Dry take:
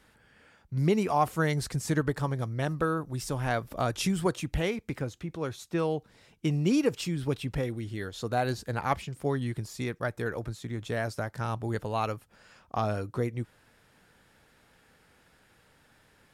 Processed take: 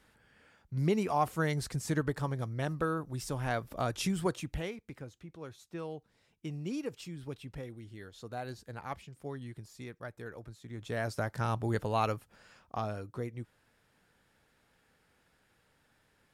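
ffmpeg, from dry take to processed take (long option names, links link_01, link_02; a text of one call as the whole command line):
ffmpeg -i in.wav -af "volume=8dB,afade=type=out:start_time=4.32:duration=0.47:silence=0.398107,afade=type=in:start_time=10.62:duration=0.65:silence=0.251189,afade=type=out:start_time=12.13:duration=0.8:silence=0.398107" out.wav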